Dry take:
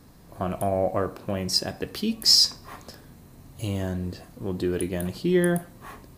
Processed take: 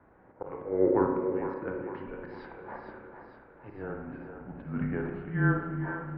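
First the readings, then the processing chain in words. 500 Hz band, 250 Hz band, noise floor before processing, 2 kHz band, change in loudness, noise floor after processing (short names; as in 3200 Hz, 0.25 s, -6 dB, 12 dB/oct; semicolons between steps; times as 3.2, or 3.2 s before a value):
-3.0 dB, -4.0 dB, -50 dBFS, 0.0 dB, -7.0 dB, -57 dBFS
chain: bell 380 Hz -2 dB 0.31 oct; auto swell 0.2 s; spring tank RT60 1.1 s, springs 31/51 ms, chirp 70 ms, DRR 2.5 dB; mistuned SSB -200 Hz 360–2100 Hz; on a send: split-band echo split 340 Hz, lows 0.331 s, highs 0.456 s, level -8 dB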